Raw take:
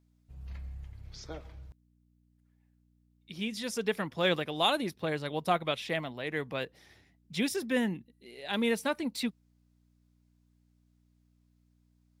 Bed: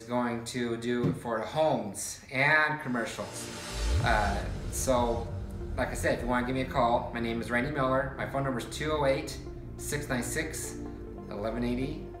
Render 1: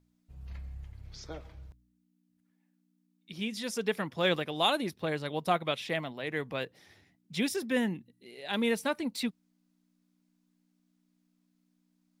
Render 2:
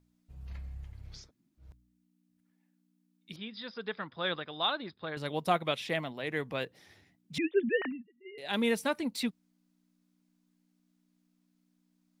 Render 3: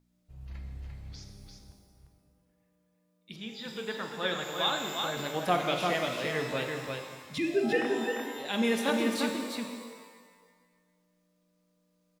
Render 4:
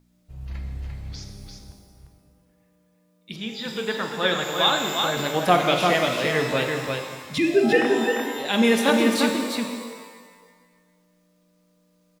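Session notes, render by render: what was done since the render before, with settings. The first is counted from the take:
hum removal 60 Hz, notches 2
0:01.23–0:01.65: fill with room tone, crossfade 0.16 s; 0:03.36–0:05.17: Chebyshev low-pass with heavy ripple 5,100 Hz, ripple 9 dB; 0:07.38–0:08.38: three sine waves on the formant tracks
single-tap delay 346 ms −4.5 dB; reverb with rising layers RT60 1.5 s, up +12 semitones, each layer −8 dB, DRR 4 dB
level +9 dB

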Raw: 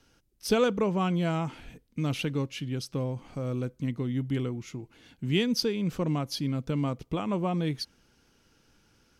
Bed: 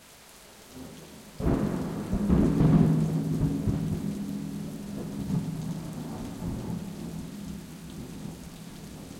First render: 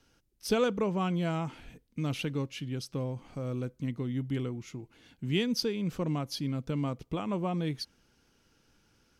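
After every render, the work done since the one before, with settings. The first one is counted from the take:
level −3 dB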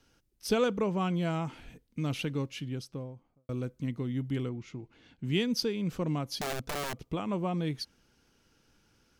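0:02.56–0:03.49: fade out and dull
0:04.49–0:05.24: high-frequency loss of the air 91 metres
0:06.41–0:07.09: wrap-around overflow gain 28.5 dB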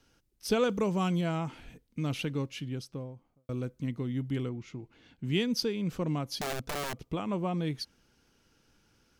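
0:00.69–0:01.21: bass and treble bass +2 dB, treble +10 dB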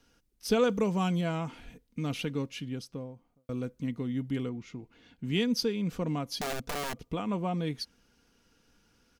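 comb filter 4.2 ms, depth 30%

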